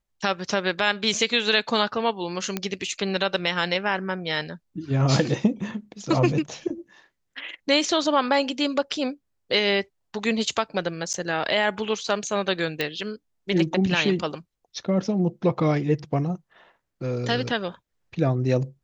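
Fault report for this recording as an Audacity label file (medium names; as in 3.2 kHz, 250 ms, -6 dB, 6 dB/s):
2.570000	2.570000	pop -11 dBFS
11.130000	11.140000	dropout 9.5 ms
12.810000	12.810000	pop -12 dBFS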